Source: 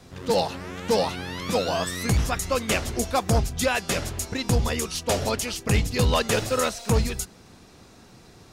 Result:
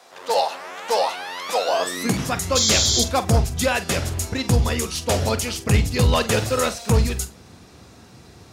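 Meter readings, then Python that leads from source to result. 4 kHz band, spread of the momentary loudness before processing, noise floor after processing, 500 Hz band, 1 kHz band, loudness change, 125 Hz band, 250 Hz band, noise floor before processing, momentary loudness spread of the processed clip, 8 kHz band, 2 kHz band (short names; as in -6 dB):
+6.5 dB, 6 LU, -47 dBFS, +2.5 dB, +4.0 dB, +4.0 dB, +4.5 dB, +3.0 dB, -51 dBFS, 8 LU, +6.5 dB, +2.5 dB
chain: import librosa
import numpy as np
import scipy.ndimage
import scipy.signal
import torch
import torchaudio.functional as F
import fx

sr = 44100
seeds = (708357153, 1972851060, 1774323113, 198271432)

p1 = fx.filter_sweep_highpass(x, sr, from_hz=700.0, to_hz=70.0, start_s=1.61, end_s=2.59, q=1.6)
p2 = fx.spec_paint(p1, sr, seeds[0], shape='noise', start_s=2.55, length_s=0.49, low_hz=3100.0, high_hz=7500.0, level_db=-22.0)
p3 = 10.0 ** (-16.5 / 20.0) * np.tanh(p2 / 10.0 ** (-16.5 / 20.0))
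p4 = p2 + (p3 * librosa.db_to_amplitude(-8.5))
y = fx.room_flutter(p4, sr, wall_m=7.8, rt60_s=0.21)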